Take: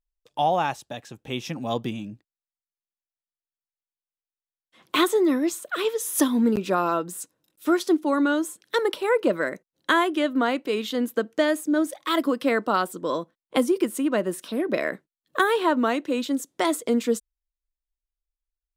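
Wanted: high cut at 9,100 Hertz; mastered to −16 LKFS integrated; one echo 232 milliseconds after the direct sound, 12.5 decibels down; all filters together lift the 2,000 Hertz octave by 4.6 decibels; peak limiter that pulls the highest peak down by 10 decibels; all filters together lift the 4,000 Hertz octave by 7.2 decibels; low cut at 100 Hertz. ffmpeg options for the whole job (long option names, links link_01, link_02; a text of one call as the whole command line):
ffmpeg -i in.wav -af "highpass=100,lowpass=9100,equalizer=frequency=2000:width_type=o:gain=4.5,equalizer=frequency=4000:width_type=o:gain=7.5,alimiter=limit=-13dB:level=0:latency=1,aecho=1:1:232:0.237,volume=8.5dB" out.wav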